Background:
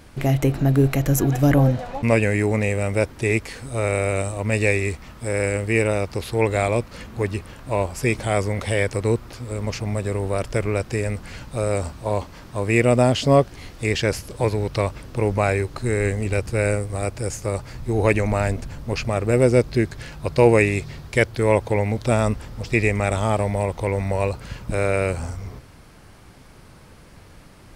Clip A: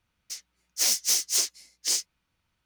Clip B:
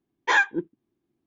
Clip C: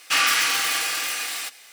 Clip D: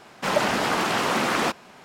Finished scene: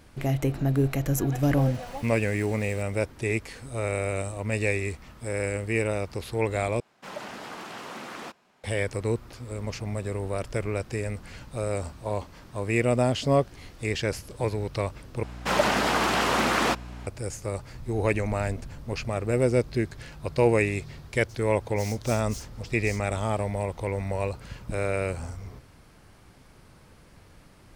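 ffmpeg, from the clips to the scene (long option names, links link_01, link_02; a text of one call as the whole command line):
ffmpeg -i bed.wav -i cue0.wav -i cue1.wav -i cue2.wav -i cue3.wav -filter_complex "[4:a]asplit=2[link_01][link_02];[0:a]volume=-6.5dB[link_03];[3:a]acompressor=threshold=-33dB:ratio=6:attack=3.2:release=140:knee=1:detection=peak[link_04];[link_02]aeval=exprs='val(0)+0.0126*(sin(2*PI*60*n/s)+sin(2*PI*2*60*n/s)/2+sin(2*PI*3*60*n/s)/3+sin(2*PI*4*60*n/s)/4+sin(2*PI*5*60*n/s)/5)':channel_layout=same[link_05];[link_03]asplit=3[link_06][link_07][link_08];[link_06]atrim=end=6.804[link_09];[link_01]atrim=end=1.84,asetpts=PTS-STARTPTS,volume=-16dB[link_10];[link_07]atrim=start=8.636:end=15.234[link_11];[link_05]atrim=end=1.84,asetpts=PTS-STARTPTS,volume=-0.5dB[link_12];[link_08]atrim=start=17.066[link_13];[link_04]atrim=end=1.72,asetpts=PTS-STARTPTS,volume=-15dB,afade=type=in:duration=0.004:curve=hsin,afade=type=out:start_time=1.716:duration=0.004:curve=hsin,adelay=1330[link_14];[1:a]atrim=end=2.65,asetpts=PTS-STARTPTS,volume=-18dB,afade=type=in:duration=0.004:curve=hsin,afade=type=out:start_time=2.646:duration=0.004:curve=hsin,adelay=20990[link_15];[link_09][link_10]acrossfade=duration=0.004:curve1=hsin:curve2=hsin[link_16];[link_16][link_11]acrossfade=duration=0.004:curve1=hsin:curve2=hsin[link_17];[link_17][link_12]acrossfade=duration=0.004:curve1=hsin:curve2=hsin[link_18];[link_18][link_13]acrossfade=duration=0.004:curve1=hsin:curve2=hsin[link_19];[link_19][link_14][link_15]amix=inputs=3:normalize=0" out.wav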